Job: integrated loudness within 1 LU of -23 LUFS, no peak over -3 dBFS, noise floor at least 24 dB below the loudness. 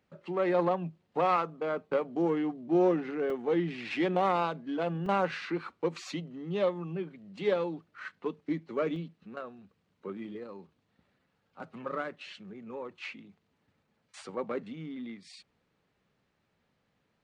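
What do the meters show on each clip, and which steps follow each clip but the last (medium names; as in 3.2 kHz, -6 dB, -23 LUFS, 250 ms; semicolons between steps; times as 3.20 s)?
dropouts 3; longest dropout 2.2 ms; loudness -32.5 LUFS; peak level -15.5 dBFS; loudness target -23.0 LUFS
-> interpolate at 3.30/5.06/8.96 s, 2.2 ms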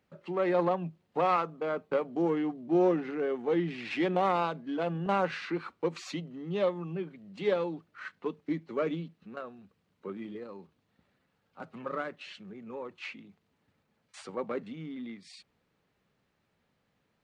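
dropouts 0; loudness -32.5 LUFS; peak level -15.5 dBFS; loudness target -23.0 LUFS
-> trim +9.5 dB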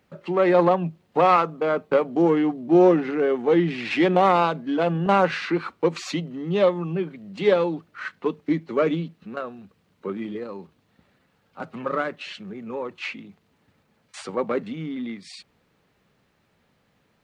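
loudness -23.0 LUFS; peak level -6.0 dBFS; noise floor -67 dBFS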